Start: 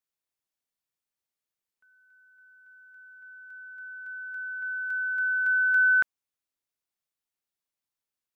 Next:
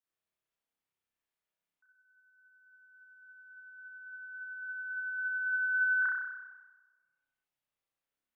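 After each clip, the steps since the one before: spring tank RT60 1.2 s, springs 30 ms, chirp 65 ms, DRR -8 dB; spectral gate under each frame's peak -30 dB strong; trim -6.5 dB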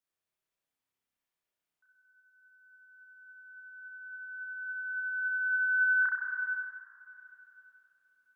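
plate-style reverb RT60 3.1 s, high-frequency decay 1×, pre-delay 120 ms, DRR 5.5 dB

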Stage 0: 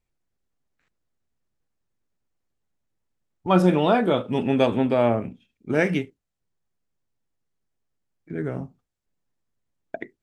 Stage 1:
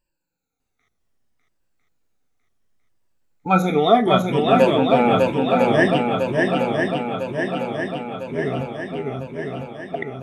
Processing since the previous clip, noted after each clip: drifting ripple filter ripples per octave 1.3, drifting -0.66 Hz, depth 21 dB; hum notches 60/120/180 Hz; shuffle delay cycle 1002 ms, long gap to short 1.5:1, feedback 60%, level -3 dB; trim -1 dB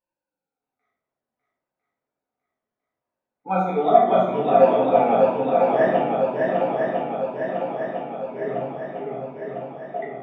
band-pass filter 710 Hz, Q 1; simulated room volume 190 m³, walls mixed, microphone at 1.9 m; trim -6.5 dB

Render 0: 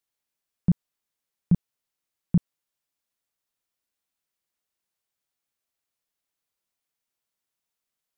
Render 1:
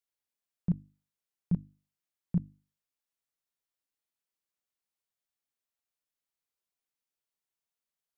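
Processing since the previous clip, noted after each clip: hum notches 50/100/150/200/250/300 Hz; trim -7.5 dB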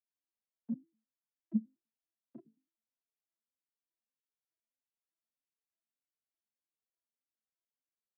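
vocoder on a broken chord minor triad, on A3, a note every 102 ms; endless flanger 5.4 ms +1.7 Hz; trim -3 dB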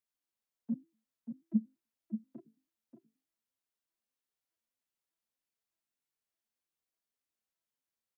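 echo from a far wall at 100 m, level -8 dB; trim +2 dB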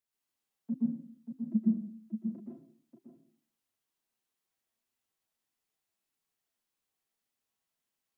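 reverberation RT60 0.55 s, pre-delay 114 ms, DRR -3.5 dB

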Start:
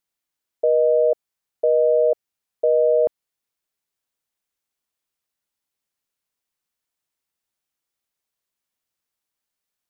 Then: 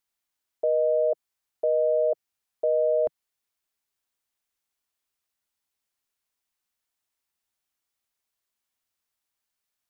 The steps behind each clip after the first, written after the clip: graphic EQ with 31 bands 160 Hz -11 dB, 315 Hz -4 dB, 500 Hz -5 dB; peak limiter -16.5 dBFS, peak gain reduction 3.5 dB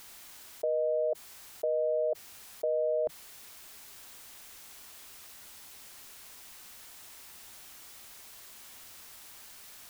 level flattener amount 70%; trim -6.5 dB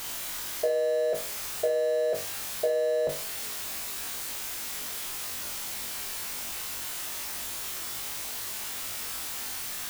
jump at every zero crossing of -39 dBFS; flutter echo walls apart 3.5 m, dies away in 0.34 s; trim +4 dB

